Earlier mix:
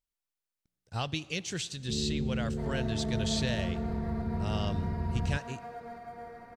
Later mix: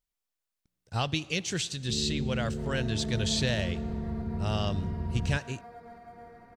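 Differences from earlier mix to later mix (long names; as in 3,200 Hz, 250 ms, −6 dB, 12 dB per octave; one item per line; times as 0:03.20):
speech +4.0 dB
first sound: send off
second sound −4.5 dB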